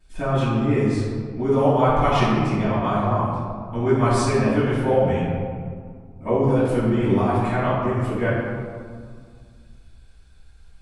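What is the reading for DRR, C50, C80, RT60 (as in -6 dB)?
-14.5 dB, -2.0 dB, 0.5 dB, 2.0 s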